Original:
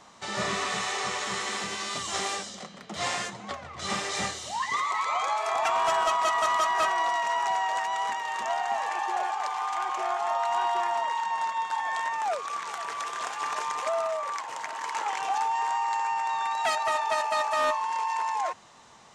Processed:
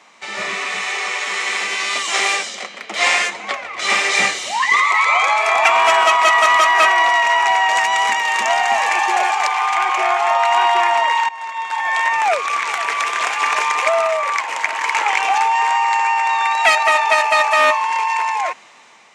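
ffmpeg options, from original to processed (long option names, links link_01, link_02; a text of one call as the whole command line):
ffmpeg -i in.wav -filter_complex "[0:a]asettb=1/sr,asplit=3[link_01][link_02][link_03];[link_01]atrim=end=1.004[link_04];[link_02]atrim=start=1:end=4.05,asetpts=PTS-STARTPTS,afade=type=in:duration=0.004:curve=qsin,afade=type=out:start_time=3.046:duration=0.004:curve=qsin,equalizer=frequency=150:width=1.5:gain=-13[link_05];[link_03]atrim=start=4.046[link_06];[link_04][link_05]acrossfade=duration=0.004:curve1=hsin:curve2=qsin[link_07];[link_07][link_06]acrossfade=duration=0.004:curve1=qsin:curve2=hsin,asettb=1/sr,asplit=3[link_08][link_09][link_10];[link_08]atrim=end=7.694[link_11];[link_09]atrim=start=7.69:end=9.47,asetpts=PTS-STARTPTS,afade=type=in:duration=0.004:curve=qsin,afade=type=out:start_time=1.776:duration=0.004:curve=qsin,bass=frequency=250:gain=9,treble=frequency=4000:gain=6[link_12];[link_10]atrim=start=9.466[link_13];[link_11][link_12]acrossfade=duration=0.004:curve1=hsin:curve2=qsin[link_14];[link_14][link_13]acrossfade=duration=0.004:curve1=qsin:curve2=hsin,asplit=2[link_15][link_16];[link_15]atrim=end=11.29,asetpts=PTS-STARTPTS,afade=type=out:start_time=11.286:duration=0.004:curve=hsin:silence=0.11885[link_17];[link_16]atrim=start=11.29,asetpts=PTS-STARTPTS,afade=type=in:duration=0.89:silence=0.11885[link_18];[link_17][link_18]concat=n=2:v=0:a=1,highpass=260,equalizer=frequency=2300:width_type=o:width=0.6:gain=12,dynaudnorm=framelen=650:gausssize=5:maxgain=9.5dB,volume=2dB" out.wav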